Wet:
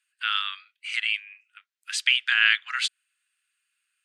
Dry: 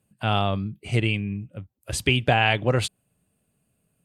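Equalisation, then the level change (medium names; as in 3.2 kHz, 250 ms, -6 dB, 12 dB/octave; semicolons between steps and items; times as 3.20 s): steep high-pass 1.4 kHz 48 dB/octave; dynamic bell 2.5 kHz, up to -5 dB, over -37 dBFS, Q 3.4; distance through air 84 m; +7.5 dB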